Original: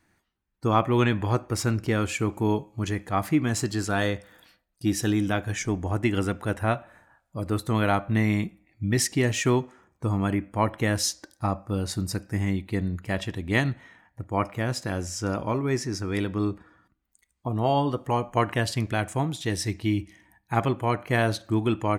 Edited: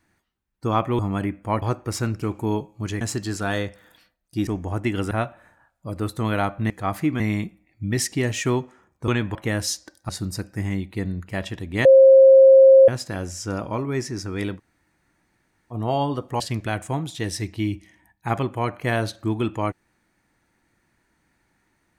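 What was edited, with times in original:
0.99–1.26 swap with 10.08–10.71
1.86–2.2 cut
2.99–3.49 move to 8.2
4.95–5.66 cut
6.3–6.61 cut
11.45–11.85 cut
13.61–14.64 bleep 534 Hz -7 dBFS
16.33–17.49 room tone, crossfade 0.06 s
18.16–18.66 cut

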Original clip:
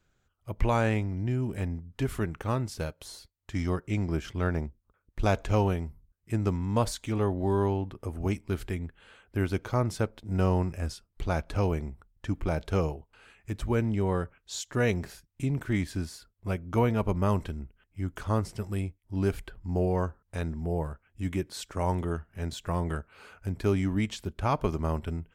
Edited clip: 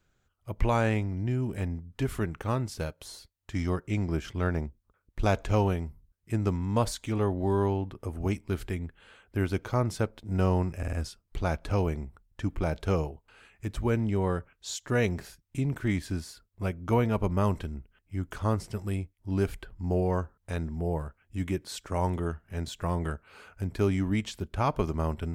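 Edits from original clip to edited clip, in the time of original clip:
10.78 stutter 0.05 s, 4 plays

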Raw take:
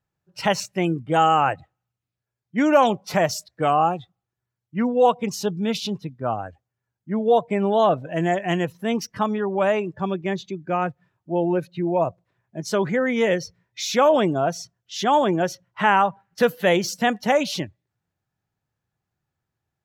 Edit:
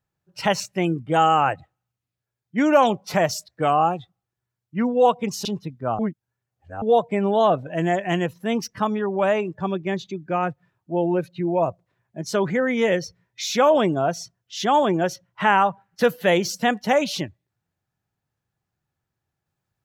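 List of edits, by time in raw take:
5.45–5.84 cut
6.38–7.21 reverse

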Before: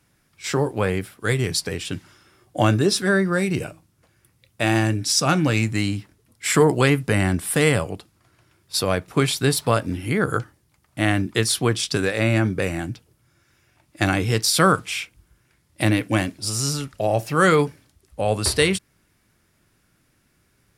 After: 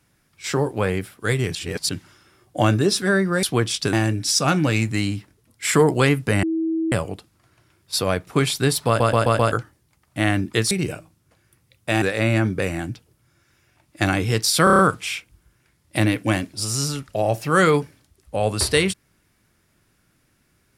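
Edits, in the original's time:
1.55–1.89 reverse
3.43–4.74 swap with 11.52–12.02
7.24–7.73 bleep 324 Hz -19.5 dBFS
9.68 stutter in place 0.13 s, 5 plays
14.64 stutter 0.03 s, 6 plays

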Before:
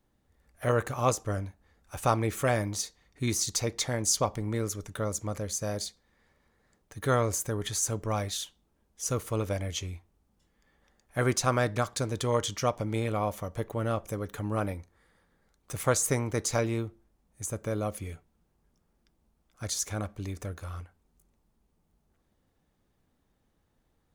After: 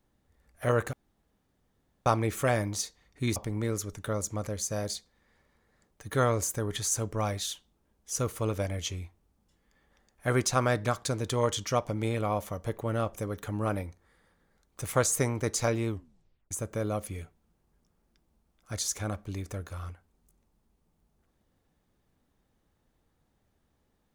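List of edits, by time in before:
0.93–2.06 room tone
3.36–4.27 cut
16.79 tape stop 0.63 s

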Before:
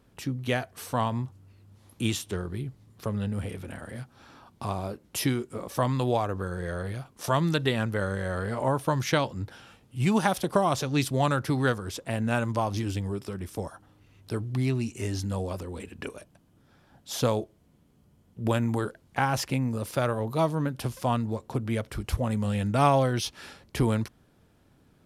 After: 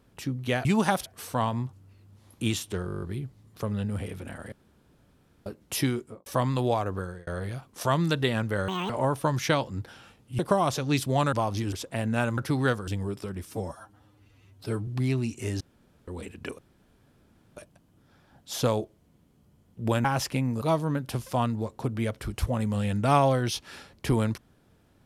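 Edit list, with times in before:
2.45 stutter 0.02 s, 9 plays
3.95–4.89 room tone
5.41–5.69 studio fade out
6.42–6.7 fade out
8.11–8.53 speed 195%
10.02–10.43 move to 0.65
11.37–11.87 swap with 12.52–12.92
13.51–14.45 stretch 1.5×
15.18–15.65 room tone
16.16 insert room tone 0.98 s
18.64–19.22 cut
19.79–20.32 cut

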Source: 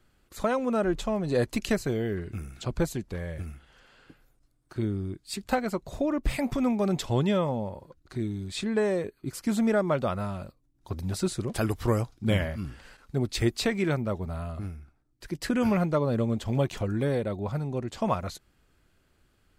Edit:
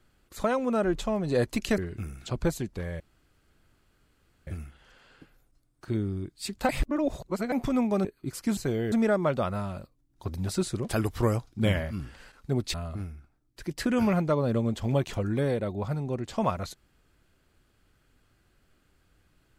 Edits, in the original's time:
1.78–2.13 move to 9.57
3.35 insert room tone 1.47 s
5.57–6.4 reverse
6.93–9.05 cut
13.39–14.38 cut

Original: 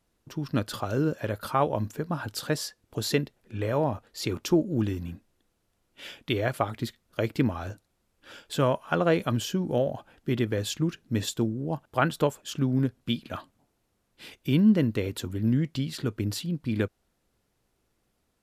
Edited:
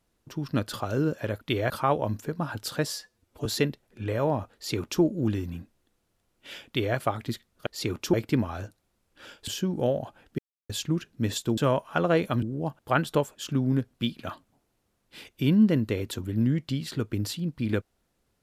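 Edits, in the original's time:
2.64–2.99 stretch 1.5×
4.08–4.55 copy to 7.2
6.21–6.5 copy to 1.41
8.54–9.39 move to 11.49
10.3–10.61 mute

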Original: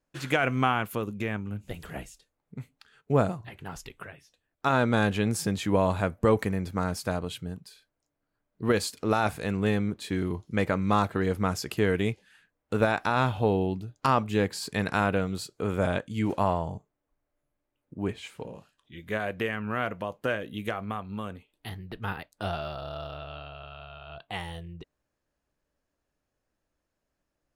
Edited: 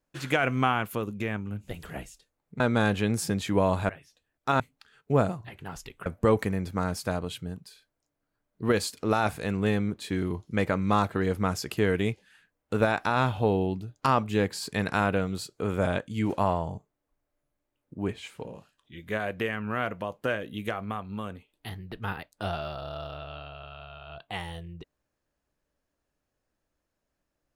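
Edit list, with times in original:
2.6–4.06 swap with 4.77–6.06

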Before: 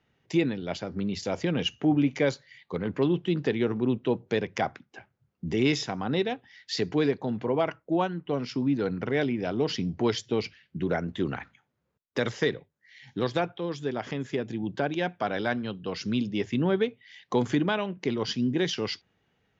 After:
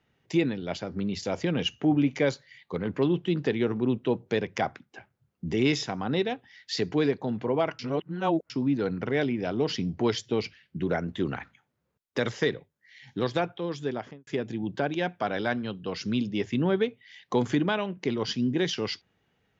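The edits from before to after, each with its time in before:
7.79–8.5 reverse
13.89–14.27 studio fade out

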